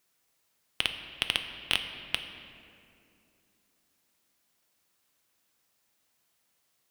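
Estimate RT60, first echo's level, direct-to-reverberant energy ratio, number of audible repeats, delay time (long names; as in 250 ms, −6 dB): 2.6 s, no echo audible, 6.0 dB, no echo audible, no echo audible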